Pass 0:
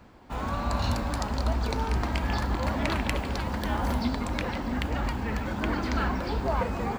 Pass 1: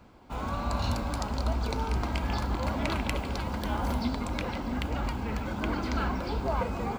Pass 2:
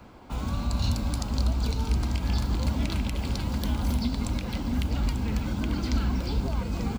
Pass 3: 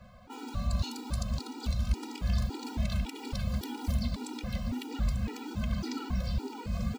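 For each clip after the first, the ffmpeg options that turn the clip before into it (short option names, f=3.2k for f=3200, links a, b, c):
-af "bandreject=f=1.8k:w=7.2,volume=-2dB"
-filter_complex "[0:a]alimiter=limit=-20.5dB:level=0:latency=1:release=156,acrossover=split=280|3000[a][b][c];[b]acompressor=threshold=-52dB:ratio=2.5[d];[a][d][c]amix=inputs=3:normalize=0,aecho=1:1:892:0.282,volume=6dB"
-af "afftfilt=real='re*gt(sin(2*PI*1.8*pts/sr)*(1-2*mod(floor(b*sr/1024/250),2)),0)':imag='im*gt(sin(2*PI*1.8*pts/sr)*(1-2*mod(floor(b*sr/1024/250),2)),0)':win_size=1024:overlap=0.75,volume=-2dB"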